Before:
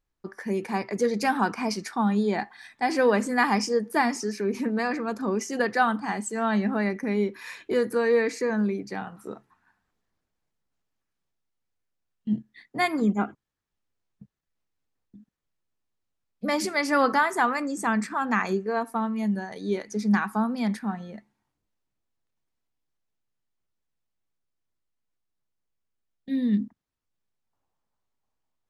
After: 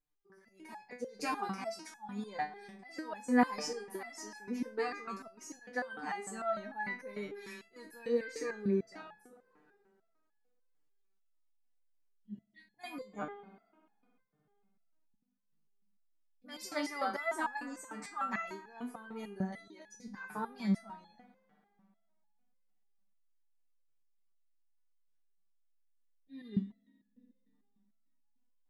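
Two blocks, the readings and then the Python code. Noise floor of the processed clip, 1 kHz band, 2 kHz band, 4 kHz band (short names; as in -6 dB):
-76 dBFS, -12.5 dB, -13.0 dB, -11.5 dB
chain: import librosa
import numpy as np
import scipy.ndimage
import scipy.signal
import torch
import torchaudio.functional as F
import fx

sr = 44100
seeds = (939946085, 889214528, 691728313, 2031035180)

y = fx.rev_spring(x, sr, rt60_s=2.6, pass_ms=(59,), chirp_ms=35, drr_db=16.5)
y = fx.auto_swell(y, sr, attack_ms=207.0)
y = fx.resonator_held(y, sr, hz=6.7, low_hz=150.0, high_hz=850.0)
y = y * 10.0 ** (4.0 / 20.0)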